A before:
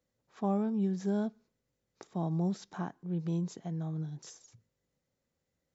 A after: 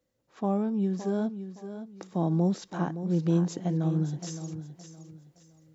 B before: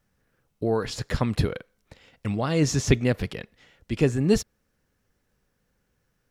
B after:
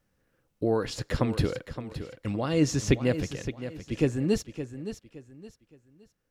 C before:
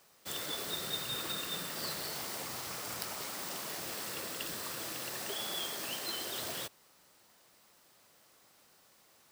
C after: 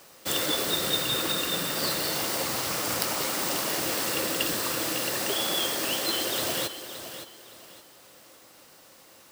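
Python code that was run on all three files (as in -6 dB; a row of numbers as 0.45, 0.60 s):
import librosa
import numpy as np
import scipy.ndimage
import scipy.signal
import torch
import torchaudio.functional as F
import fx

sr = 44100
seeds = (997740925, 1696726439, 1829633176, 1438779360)

p1 = fx.rider(x, sr, range_db=10, speed_s=2.0)
p2 = fx.small_body(p1, sr, hz=(310.0, 520.0, 2800.0), ring_ms=45, db=6)
p3 = p2 + fx.echo_feedback(p2, sr, ms=567, feedback_pct=30, wet_db=-11.0, dry=0)
y = p3 * 10.0 ** (-30 / 20.0) / np.sqrt(np.mean(np.square(p3)))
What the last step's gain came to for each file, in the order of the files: +5.5, -4.0, +10.0 dB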